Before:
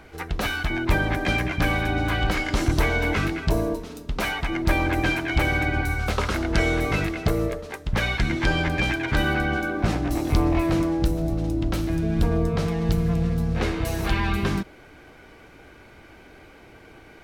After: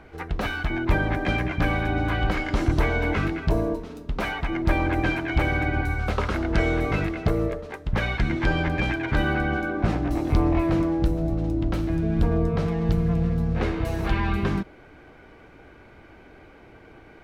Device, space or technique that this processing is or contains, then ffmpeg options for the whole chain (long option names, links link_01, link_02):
through cloth: -af "highshelf=frequency=3800:gain=-13"